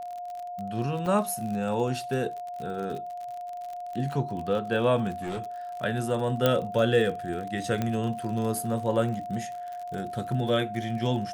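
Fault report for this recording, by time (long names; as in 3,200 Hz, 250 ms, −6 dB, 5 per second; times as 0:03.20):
surface crackle 45 per second −34 dBFS
whistle 710 Hz −34 dBFS
0:01.06: drop-out 2.1 ms
0:05.12–0:05.40: clipping −28.5 dBFS
0:06.46: click −9 dBFS
0:07.82: click −15 dBFS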